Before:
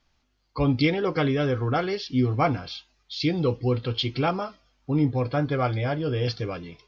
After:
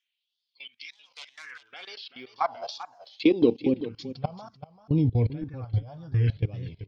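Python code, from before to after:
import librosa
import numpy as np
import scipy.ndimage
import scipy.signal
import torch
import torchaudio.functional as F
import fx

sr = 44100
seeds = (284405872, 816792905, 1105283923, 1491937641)

p1 = fx.self_delay(x, sr, depth_ms=0.15, at=(0.92, 1.57))
p2 = fx.filter_sweep_highpass(p1, sr, from_hz=3300.0, to_hz=94.0, start_s=0.91, end_s=4.68, q=3.0)
p3 = fx.phaser_stages(p2, sr, stages=4, low_hz=320.0, high_hz=1600.0, hz=0.64, feedback_pct=20)
p4 = fx.level_steps(p3, sr, step_db=21)
p5 = fx.transient(p4, sr, attack_db=7, sustain_db=11, at=(2.61, 3.52), fade=0.02)
p6 = fx.peak_eq(p5, sr, hz=1300.0, db=-7.0, octaves=0.27)
p7 = p6 + fx.echo_single(p6, sr, ms=387, db=-13.5, dry=0)
y = fx.wow_flutter(p7, sr, seeds[0], rate_hz=2.1, depth_cents=100.0)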